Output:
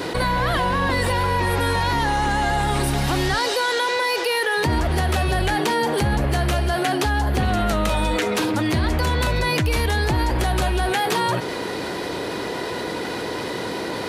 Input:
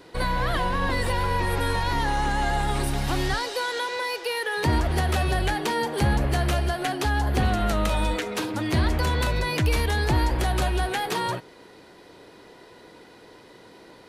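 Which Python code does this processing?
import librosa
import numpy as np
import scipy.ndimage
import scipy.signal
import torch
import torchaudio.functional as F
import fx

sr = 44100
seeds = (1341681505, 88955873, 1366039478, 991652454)

y = scipy.signal.sosfilt(scipy.signal.butter(2, 52.0, 'highpass', fs=sr, output='sos'), x)
y = fx.env_flatten(y, sr, amount_pct=70)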